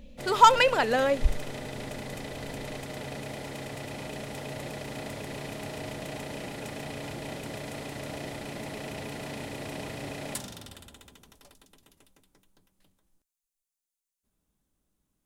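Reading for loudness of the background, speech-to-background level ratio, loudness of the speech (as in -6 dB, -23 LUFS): -38.0 LUFS, 15.5 dB, -22.5 LUFS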